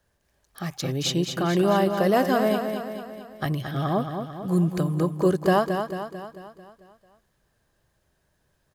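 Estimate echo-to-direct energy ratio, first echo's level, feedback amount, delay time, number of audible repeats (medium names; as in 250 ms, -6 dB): -5.5 dB, -7.0 dB, 54%, 222 ms, 6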